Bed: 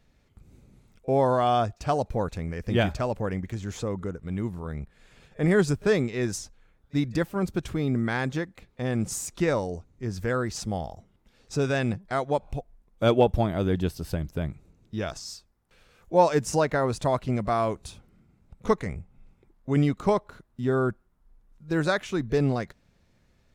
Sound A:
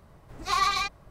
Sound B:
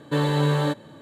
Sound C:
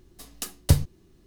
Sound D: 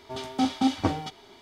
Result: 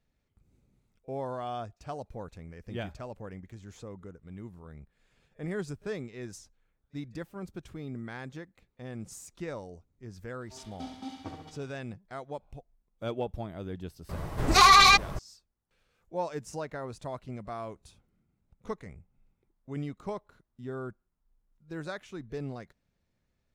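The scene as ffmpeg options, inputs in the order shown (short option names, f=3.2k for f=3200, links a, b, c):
-filter_complex "[0:a]volume=-13.5dB[a];[4:a]aecho=1:1:70|140|210|280|350|420|490:0.501|0.276|0.152|0.0834|0.0459|0.0252|0.0139[b];[1:a]alimiter=level_in=24dB:limit=-1dB:release=50:level=0:latency=1[c];[b]atrim=end=1.41,asetpts=PTS-STARTPTS,volume=-17dB,afade=t=in:d=0.004:c=hsin,afade=t=out:st=1.406:d=0.004:c=hsin,adelay=10410[d];[c]atrim=end=1.1,asetpts=PTS-STARTPTS,volume=-7.5dB,afade=t=in:d=0.004:c=hsin,afade=t=out:st=1.096:d=0.004:c=hsin,adelay=14090[e];[a][d][e]amix=inputs=3:normalize=0"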